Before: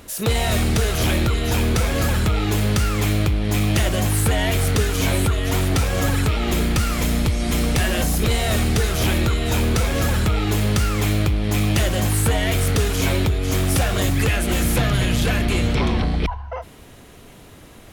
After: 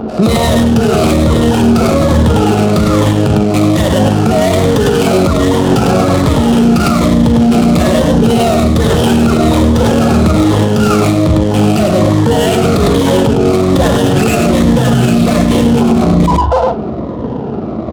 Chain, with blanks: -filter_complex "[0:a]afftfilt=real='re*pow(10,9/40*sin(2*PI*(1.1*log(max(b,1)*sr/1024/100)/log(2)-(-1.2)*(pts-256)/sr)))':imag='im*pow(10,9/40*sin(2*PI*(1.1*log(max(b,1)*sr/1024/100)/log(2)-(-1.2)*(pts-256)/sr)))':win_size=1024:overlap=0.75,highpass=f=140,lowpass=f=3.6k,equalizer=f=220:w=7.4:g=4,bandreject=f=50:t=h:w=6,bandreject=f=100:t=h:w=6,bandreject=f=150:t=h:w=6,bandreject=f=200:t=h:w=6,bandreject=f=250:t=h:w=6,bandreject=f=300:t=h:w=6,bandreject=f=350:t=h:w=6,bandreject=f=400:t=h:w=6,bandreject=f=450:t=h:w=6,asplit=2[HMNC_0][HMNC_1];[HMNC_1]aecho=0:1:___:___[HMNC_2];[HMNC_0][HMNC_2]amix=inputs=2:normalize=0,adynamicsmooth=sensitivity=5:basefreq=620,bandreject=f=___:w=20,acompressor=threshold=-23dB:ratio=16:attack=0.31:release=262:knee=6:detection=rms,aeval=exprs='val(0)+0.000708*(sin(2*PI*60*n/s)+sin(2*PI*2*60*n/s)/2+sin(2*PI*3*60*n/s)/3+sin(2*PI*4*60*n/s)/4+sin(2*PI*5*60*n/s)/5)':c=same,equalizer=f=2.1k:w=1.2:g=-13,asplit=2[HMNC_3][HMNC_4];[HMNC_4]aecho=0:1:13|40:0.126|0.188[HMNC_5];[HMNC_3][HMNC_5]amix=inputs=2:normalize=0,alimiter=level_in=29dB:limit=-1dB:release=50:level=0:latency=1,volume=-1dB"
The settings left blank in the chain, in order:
103, 0.531, 1.6k